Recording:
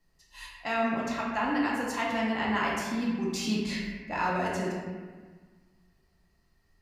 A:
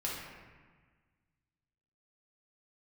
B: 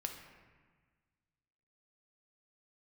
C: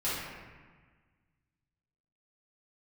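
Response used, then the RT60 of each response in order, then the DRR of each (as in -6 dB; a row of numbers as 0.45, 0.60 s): A; 1.5, 1.5, 1.5 s; -5.0, 3.5, -11.5 dB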